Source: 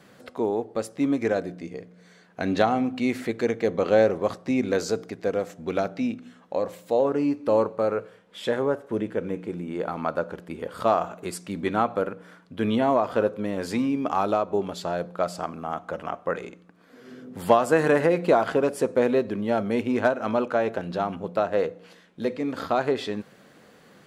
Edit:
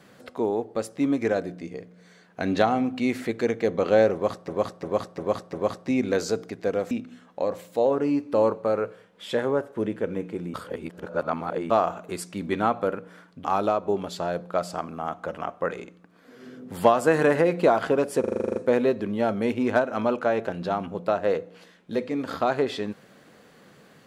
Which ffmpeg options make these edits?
-filter_complex "[0:a]asplit=18[a][b][c][d][e][f][g][h][i][j][k][l][m][n][o][p][q][r];[a]atrim=end=4.482[s];[b]atrim=start=4.128:end=4.482[t];[c]atrim=start=4.128:end=4.482[u];[d]atrim=start=4.128:end=4.482[v];[e]atrim=start=4.128:end=5.512[w];[f]atrim=start=6.048:end=9.682[x];[g]atrim=start=9.678:end=10.842,asetpts=PTS-STARTPTS,areverse[y];[h]atrim=start=10.838:end=12.582[z];[i]atrim=start=14.088:end=18.892[aa];[j]atrim=start=18.848:end=18.892[ab];[k]atrim=start=18.848:end=18.892[ac];[l]atrim=start=18.848:end=18.892[ad];[m]atrim=start=18.848:end=18.892[ae];[n]atrim=start=18.848:end=18.892[af];[o]atrim=start=18.848:end=18.892[ag];[p]atrim=start=18.848:end=18.892[ah];[q]atrim=start=18.848:end=18.892[ai];[r]atrim=start=18.848[aj];[s][t]acrossfade=d=0.004:c1=hsin:c2=hsin[ak];[ak][u]acrossfade=d=0.004:c1=hsin:c2=hsin[al];[al][v]acrossfade=d=0.004:c1=hsin:c2=hsin[am];[am][w]acrossfade=d=0.004:c1=hsin:c2=hsin[an];[an][x]acrossfade=d=0.004:c1=hsin:c2=hsin[ao];[ao][y]acrossfade=d=0.004:c1=hsin:c2=hsin[ap];[ap][z]acrossfade=d=0.004:c1=hsin:c2=hsin[aq];[aq][aa]acrossfade=d=0.004:c1=hsin:c2=hsin[ar];[ar][ab]acrossfade=d=0.004:c1=hsin:c2=hsin[as];[as][ac]acrossfade=d=0.004:c1=hsin:c2=hsin[at];[at][ad]acrossfade=d=0.004:c1=hsin:c2=hsin[au];[au][ae]acrossfade=d=0.004:c1=hsin:c2=hsin[av];[av][af]acrossfade=d=0.004:c1=hsin:c2=hsin[aw];[aw][ag]acrossfade=d=0.004:c1=hsin:c2=hsin[ax];[ax][ah]acrossfade=d=0.004:c1=hsin:c2=hsin[ay];[ay][ai]acrossfade=d=0.004:c1=hsin:c2=hsin[az];[az][aj]acrossfade=d=0.004:c1=hsin:c2=hsin"

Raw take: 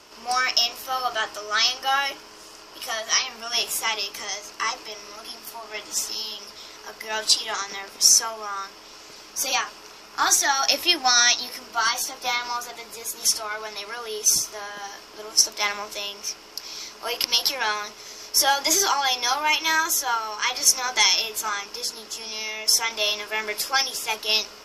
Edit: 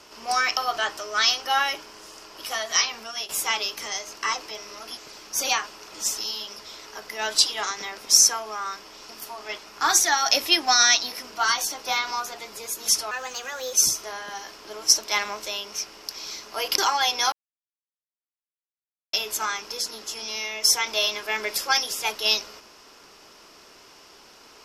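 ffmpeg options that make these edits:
-filter_complex "[0:a]asplit=12[a][b][c][d][e][f][g][h][i][j][k][l];[a]atrim=end=0.572[m];[b]atrim=start=0.938:end=3.66,asetpts=PTS-STARTPTS,afade=t=out:st=2.412:d=0.31:silence=0.177828[n];[c]atrim=start=3.66:end=5.342,asetpts=PTS-STARTPTS,afade=t=in:d=0.004:c=hsin:silence=0.177828[o];[d]atrim=start=8.998:end=9.952[p];[e]atrim=start=5.828:end=9.002[q];[f]atrim=start=5.338:end=5.832[r];[g]atrim=start=9.948:end=13.484[s];[h]atrim=start=13.48:end=14.22,asetpts=PTS-STARTPTS,asetrate=52479,aresample=44100[t];[i]atrim=start=14.216:end=17.272[u];[j]atrim=start=18.818:end=19.36,asetpts=PTS-STARTPTS,afade=t=out:st=0.538:d=0.004:c=hsin[v];[k]atrim=start=19.36:end=21.17,asetpts=PTS-STARTPTS,volume=0[w];[l]atrim=start=21.17,asetpts=PTS-STARTPTS,afade=t=in:d=0.004:c=hsin[x];[n][o]concat=n=2:v=0:a=1[y];[m][y]acrossfade=d=0.004:c1=hsin:c2=hsin[z];[z][p]acrossfade=d=0.004:c1=hsin:c2=hsin[aa];[aa][q]acrossfade=d=0.004:c1=hsin:c2=hsin[ab];[ab][r]acrossfade=d=0.004:c1=hsin:c2=hsin[ac];[ac][s]acrossfade=d=0.004:c1=hsin:c2=hsin[ad];[ad][t]acrossfade=d=0.004:c1=hsin:c2=hsin[ae];[ae][u]acrossfade=d=0.004:c1=hsin:c2=hsin[af];[v][w][x]concat=n=3:v=0:a=1[ag];[af][ag]acrossfade=d=0.004:c1=hsin:c2=hsin"

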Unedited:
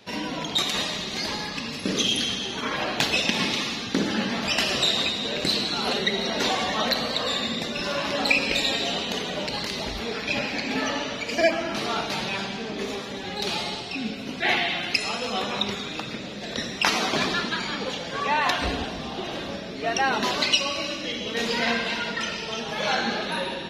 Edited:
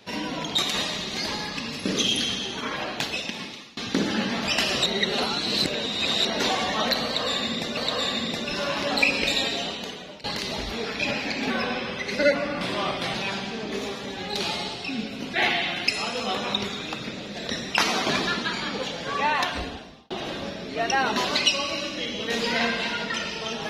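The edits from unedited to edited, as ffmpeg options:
-filter_complex "[0:a]asplit=9[a][b][c][d][e][f][g][h][i];[a]atrim=end=3.77,asetpts=PTS-STARTPTS,afade=t=out:st=2.38:d=1.39:silence=0.0668344[j];[b]atrim=start=3.77:end=4.862,asetpts=PTS-STARTPTS,afade=t=in:d=0.004:c=hsin:silence=0.0668344[k];[c]atrim=start=4.858:end=6.252,asetpts=PTS-STARTPTS,areverse[l];[d]atrim=start=6.248:end=7.772[m];[e]atrim=start=7.048:end=9.52,asetpts=PTS-STARTPTS,afade=t=out:st=1.622:d=0.85:silence=0.125893[n];[f]atrim=start=9.52:end=10.784,asetpts=PTS-STARTPTS,afade=t=in:d=0.004:c=hsin:silence=0.125893[o];[g]atrim=start=10.78:end=12.21,asetpts=PTS-STARTPTS,asetrate=38367,aresample=44100,atrim=end_sample=72486,asetpts=PTS-STARTPTS[p];[h]atrim=start=12.206:end=19.17,asetpts=PTS-STARTPTS,afade=t=out:st=6.124:d=0.84[q];[i]atrim=start=19.17,asetpts=PTS-STARTPTS,afade=t=in:d=0.004:c=hsin[r];[j][k]concat=n=2:v=0:a=1[s];[s][l]acrossfade=d=0.004:c1=hsin:c2=hsin[t];[t][m]acrossfade=d=0.004:c1=hsin:c2=hsin[u];[n][o]concat=n=2:v=0:a=1[v];[u][v]acrossfade=d=0.004:c1=hsin:c2=hsin[w];[w][p]acrossfade=d=0.004:c1=hsin:c2=hsin[x];[q][r]concat=n=2:v=0:a=1[y];[x][y]acrossfade=d=0.004:c1=hsin:c2=hsin"

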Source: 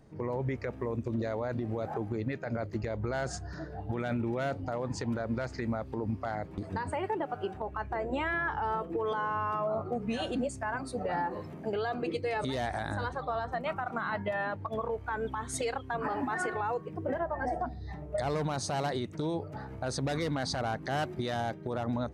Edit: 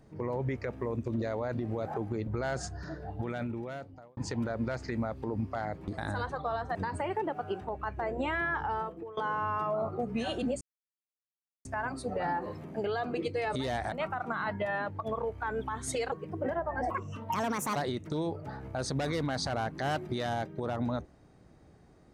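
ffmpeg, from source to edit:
-filter_complex "[0:a]asplit=11[a][b][c][d][e][f][g][h][i][j][k];[a]atrim=end=2.272[l];[b]atrim=start=2.968:end=4.87,asetpts=PTS-STARTPTS,afade=t=out:st=0.812:d=1.09[m];[c]atrim=start=4.87:end=6.682,asetpts=PTS-STARTPTS,afade=t=in:d=0.004:c=hsin[n];[d]atrim=start=12.808:end=13.582[o];[e]atrim=start=6.678:end=9.1,asetpts=PTS-STARTPTS,afade=t=out:st=1.922:d=0.5:silence=0.112202[p];[f]atrim=start=9.1:end=10.54,asetpts=PTS-STARTPTS,afade=t=in:d=0.004:c=hsin:silence=0.112202,afade=t=out:st=1.436:d=0.004:c=hsin,apad=pad_dur=1.04[q];[g]atrim=start=10.54:end=12.812,asetpts=PTS-STARTPTS,afade=t=in:d=0.004:c=hsin[r];[h]atrim=start=13.578:end=15.782[s];[i]atrim=start=16.758:end=17.544[t];[j]atrim=start=17.54:end=18.83,asetpts=PTS-STARTPTS,asetrate=66591,aresample=44100[u];[k]atrim=start=18.826[v];[m][n]concat=n=2:v=0:a=1[w];[l][w]acrossfade=d=0.004:c1=hsin:c2=hsin[x];[x][o]acrossfade=d=0.004:c1=hsin:c2=hsin[y];[p][q][r]concat=n=3:v=0:a=1[z];[y][z]acrossfade=d=0.004:c1=hsin:c2=hsin[aa];[aa][s]acrossfade=d=0.004:c1=hsin:c2=hsin[ab];[ab][t]acrossfade=d=0.004:c1=hsin:c2=hsin[ac];[ac][u]acrossfade=d=0.004:c1=hsin:c2=hsin[ad];[ad][v]acrossfade=d=0.004:c1=hsin:c2=hsin"

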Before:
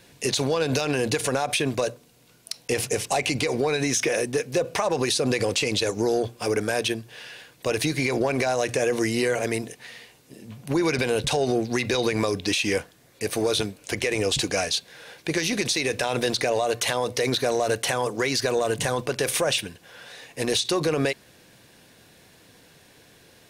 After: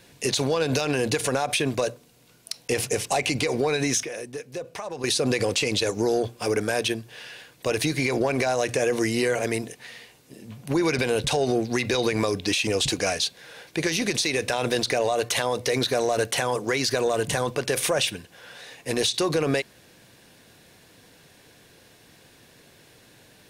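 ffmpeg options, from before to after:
-filter_complex "[0:a]asplit=4[a][b][c][d];[a]atrim=end=4.032[e];[b]atrim=start=4.028:end=5.042,asetpts=PTS-STARTPTS,volume=-10dB[f];[c]atrim=start=5.038:end=12.672[g];[d]atrim=start=14.178[h];[e][f]acrossfade=d=0.004:c1=hsin:c2=hsin[i];[i][g]acrossfade=d=0.004:c1=hsin:c2=hsin[j];[j][h]acrossfade=d=0.004:c1=hsin:c2=hsin"

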